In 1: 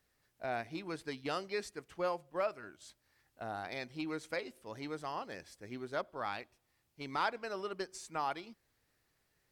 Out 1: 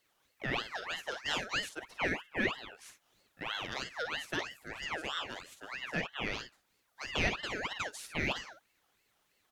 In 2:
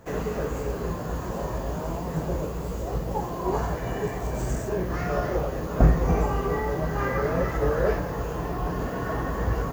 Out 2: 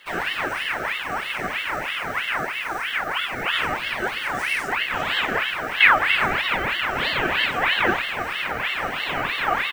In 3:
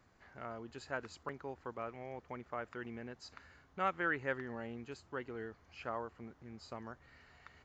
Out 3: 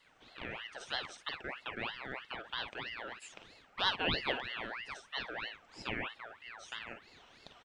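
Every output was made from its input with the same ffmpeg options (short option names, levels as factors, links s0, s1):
-af "afreqshift=160,aecho=1:1:45|56:0.335|0.316,aeval=exprs='val(0)*sin(2*PI*1700*n/s+1700*0.45/3.1*sin(2*PI*3.1*n/s))':c=same,volume=1.68"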